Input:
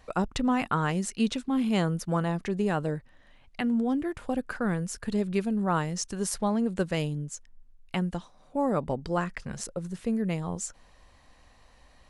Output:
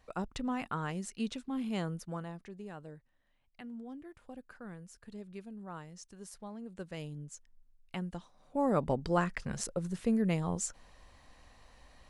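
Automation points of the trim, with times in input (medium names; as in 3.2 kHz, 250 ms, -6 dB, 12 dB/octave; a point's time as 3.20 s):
1.93 s -9.5 dB
2.56 s -18.5 dB
6.59 s -18.5 dB
7.29 s -9.5 dB
8.09 s -9.5 dB
8.83 s -1 dB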